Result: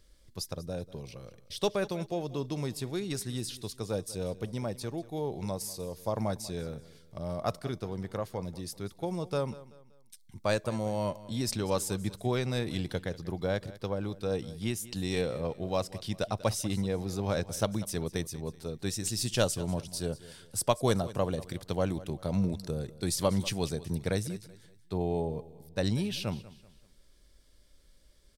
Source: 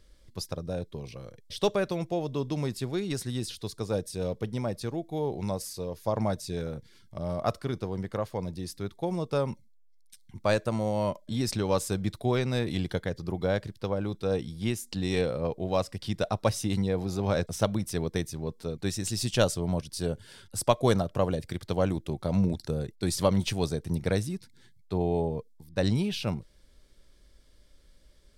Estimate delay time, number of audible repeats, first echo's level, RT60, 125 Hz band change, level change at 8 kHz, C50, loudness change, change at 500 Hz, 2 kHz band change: 191 ms, 2, -18.0 dB, no reverb, -3.5 dB, +1.0 dB, no reverb, -3.0 dB, -3.5 dB, -2.5 dB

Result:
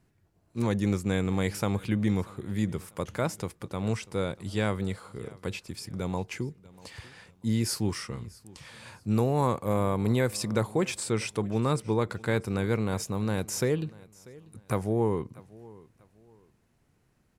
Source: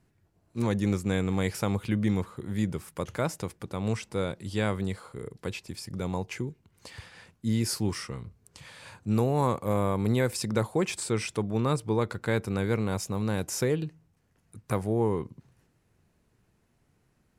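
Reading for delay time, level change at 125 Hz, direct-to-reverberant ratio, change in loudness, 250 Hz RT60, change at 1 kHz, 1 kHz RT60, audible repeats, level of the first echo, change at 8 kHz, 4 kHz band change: 641 ms, 0.0 dB, no reverb, 0.0 dB, no reverb, 0.0 dB, no reverb, 2, -22.0 dB, 0.0 dB, 0.0 dB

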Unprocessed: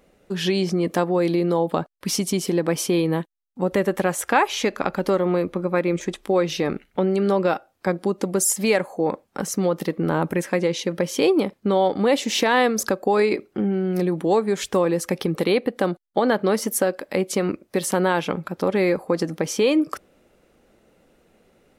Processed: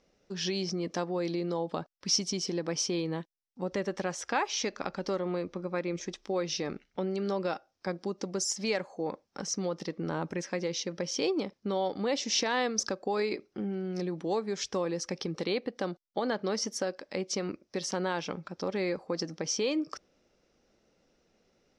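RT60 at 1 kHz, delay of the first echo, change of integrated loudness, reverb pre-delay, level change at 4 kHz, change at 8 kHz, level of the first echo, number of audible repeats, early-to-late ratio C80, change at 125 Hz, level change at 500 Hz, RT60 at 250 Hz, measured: no reverb, no echo, -10.5 dB, no reverb, -4.5 dB, -6.5 dB, no echo, no echo, no reverb, -11.5 dB, -11.5 dB, no reverb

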